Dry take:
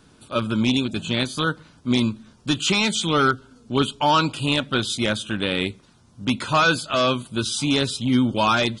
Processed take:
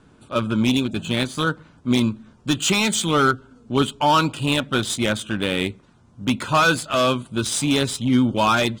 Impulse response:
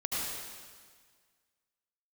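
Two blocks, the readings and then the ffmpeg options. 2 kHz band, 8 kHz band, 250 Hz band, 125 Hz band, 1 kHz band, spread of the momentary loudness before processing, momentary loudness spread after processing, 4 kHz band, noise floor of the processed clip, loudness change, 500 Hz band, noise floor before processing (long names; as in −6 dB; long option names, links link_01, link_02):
+0.5 dB, +4.0 dB, +1.5 dB, +1.5 dB, +1.5 dB, 7 LU, 8 LU, −1.0 dB, −54 dBFS, +1.0 dB, +1.5 dB, −55 dBFS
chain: -af "highshelf=frequency=6300:width_type=q:width=1.5:gain=7.5,adynamicsmooth=sensitivity=3.5:basefreq=3500,volume=1.5dB"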